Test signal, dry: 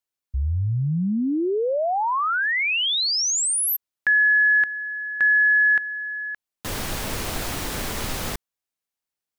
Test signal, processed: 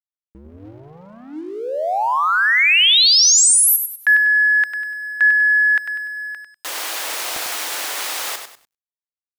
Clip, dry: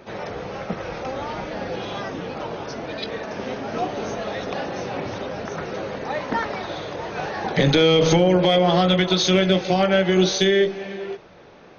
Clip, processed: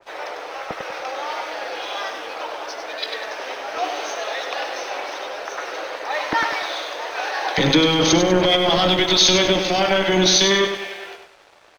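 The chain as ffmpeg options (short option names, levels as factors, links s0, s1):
-filter_complex "[0:a]acrossover=split=520|660[s0][s1][s2];[s0]acrusher=bits=2:mix=0:aa=0.5[s3];[s3][s1][s2]amix=inputs=3:normalize=0,alimiter=limit=0.188:level=0:latency=1:release=11,equalizer=f=310:t=o:w=0.22:g=9.5,asplit=2[s4][s5];[s5]aecho=0:1:98|196|294|392|490:0.447|0.179|0.0715|0.0286|0.0114[s6];[s4][s6]amix=inputs=2:normalize=0,aeval=exprs='sgn(val(0))*max(abs(val(0))-0.00211,0)':c=same,adynamicequalizer=threshold=0.02:dfrequency=1800:dqfactor=0.7:tfrequency=1800:tqfactor=0.7:attack=5:release=100:ratio=0.375:range=3:mode=boostabove:tftype=highshelf,volume=1.58"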